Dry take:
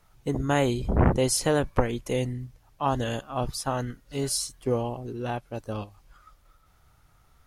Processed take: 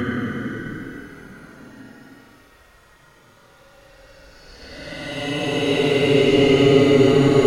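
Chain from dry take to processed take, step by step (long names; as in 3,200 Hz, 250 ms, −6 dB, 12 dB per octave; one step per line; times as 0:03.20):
mid-hump overdrive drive 26 dB, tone 1,600 Hz, clips at −6 dBFS
extreme stretch with random phases 24×, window 0.05 s, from 0:03.91
level +3.5 dB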